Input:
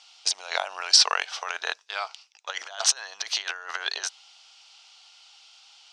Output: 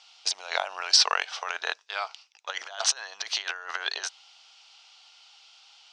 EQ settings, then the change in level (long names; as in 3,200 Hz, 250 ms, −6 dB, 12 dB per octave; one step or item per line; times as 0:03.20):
high-frequency loss of the air 51 metres
0.0 dB